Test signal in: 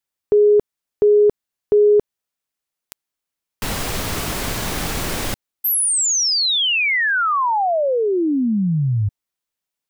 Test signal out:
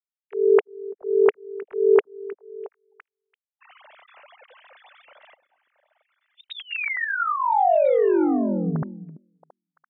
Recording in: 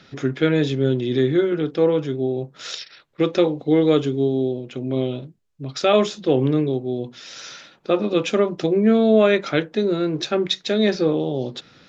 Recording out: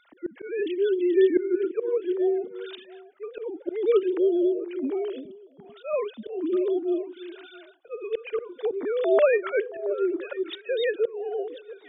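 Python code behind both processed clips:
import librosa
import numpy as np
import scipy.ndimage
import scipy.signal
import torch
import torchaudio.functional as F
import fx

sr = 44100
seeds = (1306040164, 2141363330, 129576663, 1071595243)

y = fx.sine_speech(x, sr)
y = fx.auto_swell(y, sr, attack_ms=276.0)
y = fx.echo_stepped(y, sr, ms=337, hz=250.0, octaves=1.4, feedback_pct=70, wet_db=-10.5)
y = F.gain(torch.from_numpy(y), -2.5).numpy()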